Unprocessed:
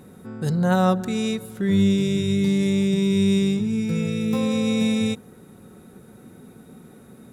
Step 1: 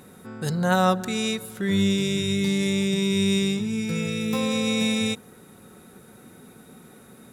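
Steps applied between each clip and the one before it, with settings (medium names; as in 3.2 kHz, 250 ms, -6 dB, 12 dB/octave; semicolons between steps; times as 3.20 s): tilt shelf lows -4.5 dB, about 650 Hz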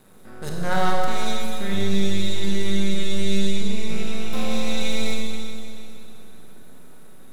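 half-wave rectifier; Schroeder reverb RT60 2.7 s, combs from 31 ms, DRR -1 dB; trim -2 dB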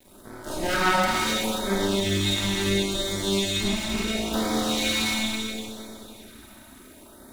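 comb filter that takes the minimum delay 3.2 ms; LFO notch sine 0.72 Hz 420–2800 Hz; trim +7 dB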